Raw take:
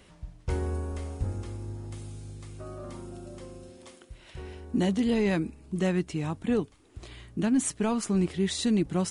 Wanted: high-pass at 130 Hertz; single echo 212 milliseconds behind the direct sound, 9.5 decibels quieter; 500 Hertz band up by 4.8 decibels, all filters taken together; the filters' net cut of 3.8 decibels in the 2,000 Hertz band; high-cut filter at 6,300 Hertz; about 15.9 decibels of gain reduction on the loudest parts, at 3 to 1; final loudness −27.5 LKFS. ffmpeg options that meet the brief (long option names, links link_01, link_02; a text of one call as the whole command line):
ffmpeg -i in.wav -af "highpass=130,lowpass=6300,equalizer=frequency=500:width_type=o:gain=6.5,equalizer=frequency=2000:width_type=o:gain=-5,acompressor=threshold=-42dB:ratio=3,aecho=1:1:212:0.335,volume=15.5dB" out.wav